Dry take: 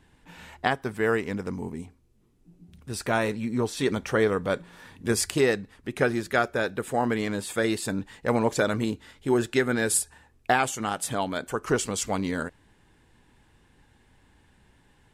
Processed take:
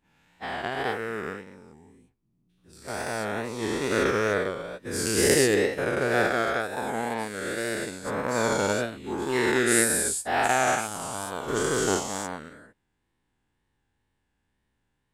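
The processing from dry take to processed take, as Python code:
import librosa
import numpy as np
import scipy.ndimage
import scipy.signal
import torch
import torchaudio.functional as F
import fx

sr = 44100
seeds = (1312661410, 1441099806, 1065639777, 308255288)

y = fx.spec_dilate(x, sr, span_ms=480)
y = fx.wow_flutter(y, sr, seeds[0], rate_hz=2.1, depth_cents=69.0)
y = fx.upward_expand(y, sr, threshold_db=-26.0, expansion=2.5)
y = F.gain(torch.from_numpy(y), -3.5).numpy()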